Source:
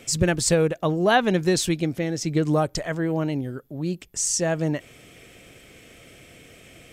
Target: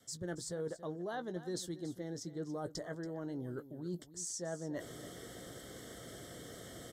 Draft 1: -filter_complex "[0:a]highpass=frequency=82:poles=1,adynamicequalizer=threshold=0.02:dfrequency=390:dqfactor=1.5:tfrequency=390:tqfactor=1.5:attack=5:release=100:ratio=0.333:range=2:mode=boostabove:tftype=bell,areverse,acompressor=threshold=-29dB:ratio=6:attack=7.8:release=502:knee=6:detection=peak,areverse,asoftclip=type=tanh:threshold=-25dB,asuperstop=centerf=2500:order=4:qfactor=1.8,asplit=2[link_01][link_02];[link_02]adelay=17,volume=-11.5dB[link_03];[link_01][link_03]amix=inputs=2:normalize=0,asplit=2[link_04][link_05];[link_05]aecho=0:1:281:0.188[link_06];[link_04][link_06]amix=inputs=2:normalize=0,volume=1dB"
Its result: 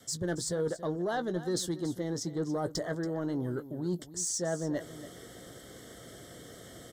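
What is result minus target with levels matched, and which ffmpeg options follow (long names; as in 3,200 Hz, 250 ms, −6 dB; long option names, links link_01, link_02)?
downward compressor: peak gain reduction −9.5 dB
-filter_complex "[0:a]highpass=frequency=82:poles=1,adynamicequalizer=threshold=0.02:dfrequency=390:dqfactor=1.5:tfrequency=390:tqfactor=1.5:attack=5:release=100:ratio=0.333:range=2:mode=boostabove:tftype=bell,areverse,acompressor=threshold=-40.5dB:ratio=6:attack=7.8:release=502:knee=6:detection=peak,areverse,asoftclip=type=tanh:threshold=-25dB,asuperstop=centerf=2500:order=4:qfactor=1.8,asplit=2[link_01][link_02];[link_02]adelay=17,volume=-11.5dB[link_03];[link_01][link_03]amix=inputs=2:normalize=0,asplit=2[link_04][link_05];[link_05]aecho=0:1:281:0.188[link_06];[link_04][link_06]amix=inputs=2:normalize=0,volume=1dB"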